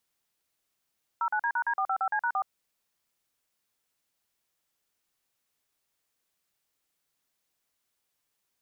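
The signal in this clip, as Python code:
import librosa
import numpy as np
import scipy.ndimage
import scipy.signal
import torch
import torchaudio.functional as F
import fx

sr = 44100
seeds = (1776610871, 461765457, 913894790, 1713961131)

y = fx.dtmf(sr, digits='09D#D455C#4', tone_ms=71, gap_ms=43, level_db=-27.5)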